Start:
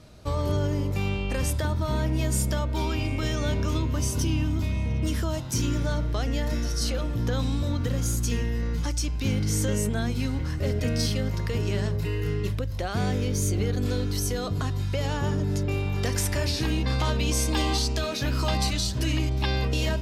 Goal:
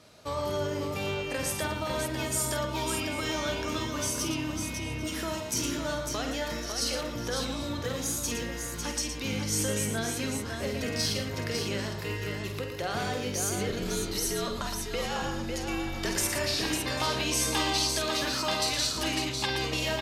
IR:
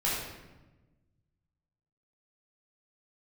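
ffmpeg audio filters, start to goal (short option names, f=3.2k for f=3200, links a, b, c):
-filter_complex "[0:a]highpass=f=470:p=1,asettb=1/sr,asplit=3[a][b][c];[a]atrim=end=13.694[d];[b]atrim=start=13.69:end=16.16,asetpts=PTS-STARTPTS,afade=t=in:d=0.004:c=qsin,afade=t=out:st=2.466:d=0.004:c=qsin,afreqshift=-63[e];[c]atrim=start=16.156[f];[d][e]acrossfade=d=0.004:c1=hsin:c2=qsin[g];[g][f]acrossfade=d=0.004:c1=qsin:c2=hsin,aecho=1:1:49|115|551|794:0.422|0.398|0.531|0.126"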